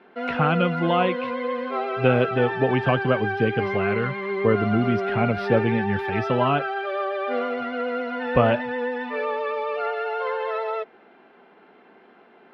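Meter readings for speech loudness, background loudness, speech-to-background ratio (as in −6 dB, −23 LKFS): −24.0 LKFS, −27.5 LKFS, 3.5 dB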